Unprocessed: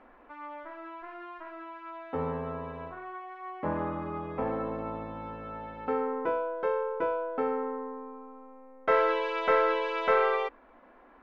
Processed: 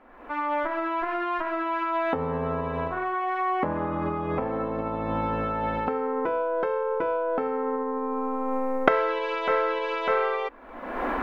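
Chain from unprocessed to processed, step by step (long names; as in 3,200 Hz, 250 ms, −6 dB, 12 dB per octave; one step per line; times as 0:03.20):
camcorder AGC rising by 46 dB per second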